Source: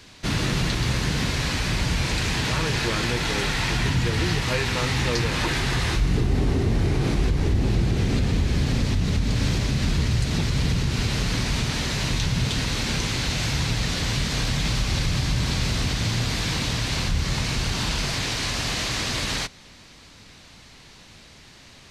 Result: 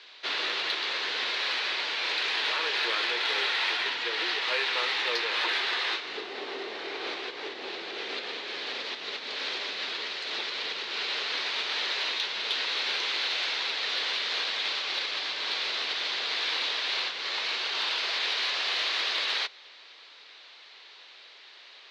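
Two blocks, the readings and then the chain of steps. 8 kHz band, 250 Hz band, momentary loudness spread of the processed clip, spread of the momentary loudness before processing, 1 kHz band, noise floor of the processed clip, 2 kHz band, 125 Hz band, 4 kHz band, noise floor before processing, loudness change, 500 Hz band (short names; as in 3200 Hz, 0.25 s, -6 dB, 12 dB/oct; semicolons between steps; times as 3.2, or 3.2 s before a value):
-14.5 dB, -21.5 dB, 10 LU, 2 LU, -3.0 dB, -51 dBFS, -0.5 dB, under -40 dB, +0.5 dB, -48 dBFS, -4.5 dB, -7.5 dB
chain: Chebyshev band-pass 400–3900 Hz, order 3; tilt +3 dB/oct; in parallel at -11.5 dB: hard clip -20 dBFS, distortion -20 dB; on the sum: gain -5 dB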